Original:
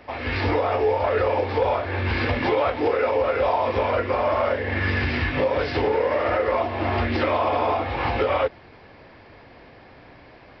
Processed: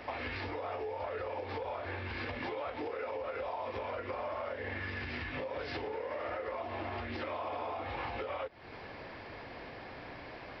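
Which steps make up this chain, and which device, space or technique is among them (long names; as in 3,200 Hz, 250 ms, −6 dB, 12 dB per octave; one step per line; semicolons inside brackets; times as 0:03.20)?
serial compression, leveller first (downward compressor 3 to 1, threshold −25 dBFS, peak gain reduction 7 dB; downward compressor 4 to 1, threshold −39 dBFS, peak gain reduction 13.5 dB)
low-shelf EQ 330 Hz −4.5 dB
level +2 dB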